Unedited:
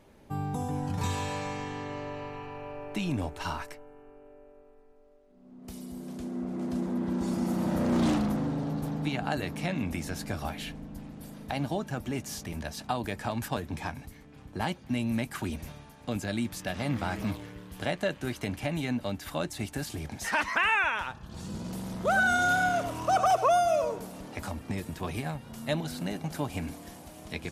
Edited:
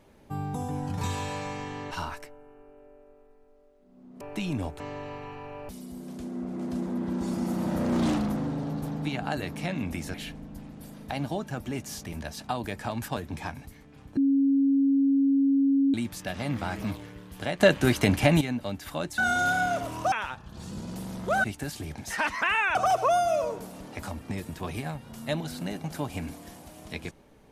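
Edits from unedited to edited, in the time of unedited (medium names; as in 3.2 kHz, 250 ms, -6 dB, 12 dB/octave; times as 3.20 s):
1.91–2.80 s: swap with 3.39–5.69 s
10.14–10.54 s: delete
14.57–16.34 s: bleep 275 Hz -19 dBFS
18.00–18.81 s: gain +11 dB
19.58–20.89 s: swap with 22.21–23.15 s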